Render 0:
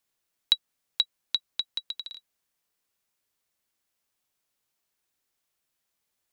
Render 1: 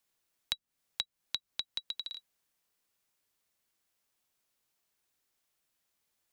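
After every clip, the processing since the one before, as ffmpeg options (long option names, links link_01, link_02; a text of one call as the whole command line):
ffmpeg -i in.wav -filter_complex "[0:a]acrossover=split=240[link_01][link_02];[link_02]acompressor=threshold=-33dB:ratio=5[link_03];[link_01][link_03]amix=inputs=2:normalize=0" out.wav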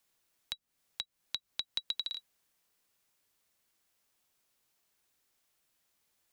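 ffmpeg -i in.wav -af "alimiter=limit=-20dB:level=0:latency=1:release=121,volume=3.5dB" out.wav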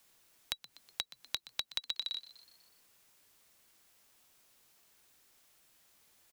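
ffmpeg -i in.wav -filter_complex "[0:a]acompressor=threshold=-44dB:ratio=4,asplit=6[link_01][link_02][link_03][link_04][link_05][link_06];[link_02]adelay=123,afreqshift=110,volume=-17dB[link_07];[link_03]adelay=246,afreqshift=220,volume=-21.9dB[link_08];[link_04]adelay=369,afreqshift=330,volume=-26.8dB[link_09];[link_05]adelay=492,afreqshift=440,volume=-31.6dB[link_10];[link_06]adelay=615,afreqshift=550,volume=-36.5dB[link_11];[link_01][link_07][link_08][link_09][link_10][link_11]amix=inputs=6:normalize=0,volume=9.5dB" out.wav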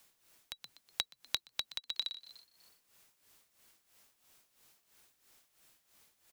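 ffmpeg -i in.wav -af "tremolo=f=3:d=0.74,volume=2.5dB" out.wav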